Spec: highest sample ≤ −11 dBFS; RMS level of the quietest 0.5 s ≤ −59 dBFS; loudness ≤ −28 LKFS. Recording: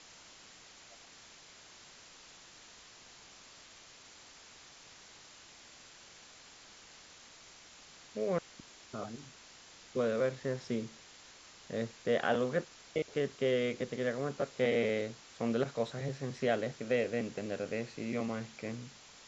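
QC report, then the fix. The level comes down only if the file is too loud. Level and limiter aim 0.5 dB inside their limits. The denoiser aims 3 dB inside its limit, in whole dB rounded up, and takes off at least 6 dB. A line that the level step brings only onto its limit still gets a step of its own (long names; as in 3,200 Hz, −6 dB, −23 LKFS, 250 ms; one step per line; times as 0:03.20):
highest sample −16.5 dBFS: in spec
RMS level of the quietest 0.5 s −56 dBFS: out of spec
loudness −35.5 LKFS: in spec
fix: broadband denoise 6 dB, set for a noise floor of −56 dBFS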